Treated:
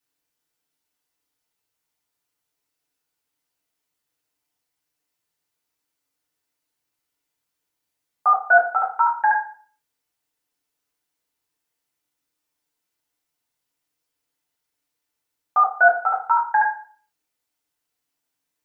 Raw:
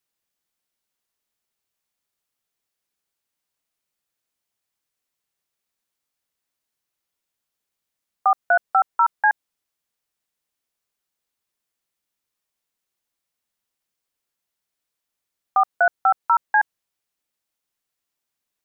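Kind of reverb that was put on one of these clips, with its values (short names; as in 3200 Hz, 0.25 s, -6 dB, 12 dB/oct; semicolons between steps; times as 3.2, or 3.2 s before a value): FDN reverb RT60 0.45 s, low-frequency decay 0.95×, high-frequency decay 0.75×, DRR -5.5 dB; gain -4 dB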